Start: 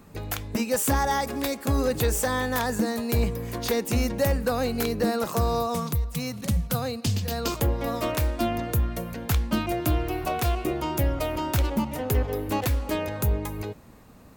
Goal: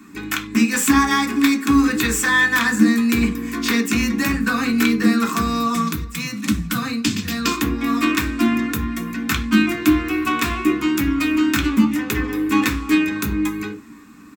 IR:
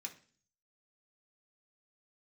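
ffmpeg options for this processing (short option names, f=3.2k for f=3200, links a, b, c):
-filter_complex "[0:a]firequalizer=gain_entry='entry(150,0);entry(300,14);entry(520,-9);entry(760,-6);entry(1100,11);entry(3800,12);entry(10000,7)':delay=0.05:min_phase=1,asplit=2[a][b];[b]adynamicsmooth=sensitivity=1:basefreq=1.8k,volume=1dB[c];[a][c]amix=inputs=2:normalize=0[d];[1:a]atrim=start_sample=2205,afade=t=out:st=0.15:d=0.01,atrim=end_sample=7056[e];[d][e]afir=irnorm=-1:irlink=0"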